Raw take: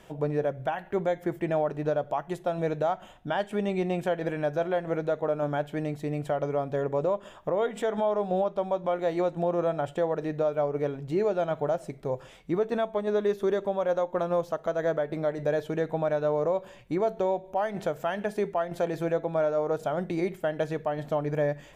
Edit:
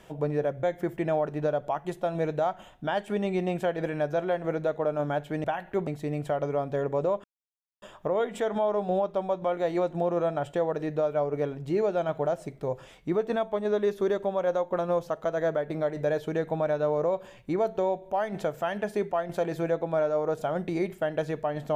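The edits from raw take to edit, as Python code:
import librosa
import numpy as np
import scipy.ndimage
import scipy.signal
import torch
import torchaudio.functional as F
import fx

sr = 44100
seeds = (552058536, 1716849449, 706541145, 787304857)

y = fx.edit(x, sr, fx.move(start_s=0.63, length_s=0.43, to_s=5.87),
    fx.insert_silence(at_s=7.24, length_s=0.58), tone=tone)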